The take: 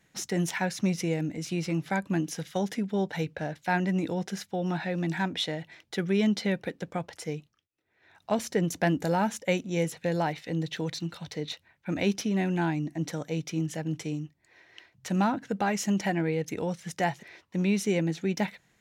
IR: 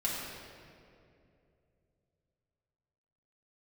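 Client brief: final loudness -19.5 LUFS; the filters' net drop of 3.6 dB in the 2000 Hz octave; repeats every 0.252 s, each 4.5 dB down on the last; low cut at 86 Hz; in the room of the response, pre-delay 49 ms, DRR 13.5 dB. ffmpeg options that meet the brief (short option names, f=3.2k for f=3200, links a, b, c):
-filter_complex "[0:a]highpass=86,equalizer=f=2k:t=o:g=-4.5,aecho=1:1:252|504|756|1008|1260|1512|1764|2016|2268:0.596|0.357|0.214|0.129|0.0772|0.0463|0.0278|0.0167|0.01,asplit=2[a][b];[1:a]atrim=start_sample=2205,adelay=49[c];[b][c]afir=irnorm=-1:irlink=0,volume=-19.5dB[d];[a][d]amix=inputs=2:normalize=0,volume=9dB"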